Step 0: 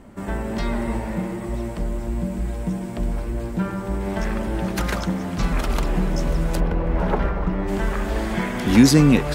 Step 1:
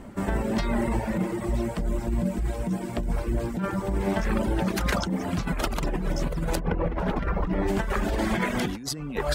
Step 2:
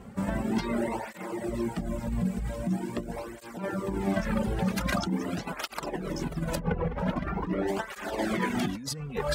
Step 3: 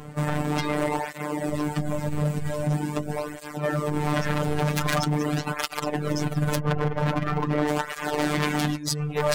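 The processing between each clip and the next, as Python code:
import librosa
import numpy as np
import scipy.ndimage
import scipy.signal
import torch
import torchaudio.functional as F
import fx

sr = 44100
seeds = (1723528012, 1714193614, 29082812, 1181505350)

y1 = fx.dereverb_blind(x, sr, rt60_s=0.81)
y1 = fx.over_compress(y1, sr, threshold_db=-26.0, ratio=-1.0)
y2 = fx.flanger_cancel(y1, sr, hz=0.44, depth_ms=3.4)
y3 = 10.0 ** (-24.5 / 20.0) * (np.abs((y2 / 10.0 ** (-24.5 / 20.0) + 3.0) % 4.0 - 2.0) - 1.0)
y3 = fx.robotise(y3, sr, hz=149.0)
y3 = y3 * librosa.db_to_amplitude(9.0)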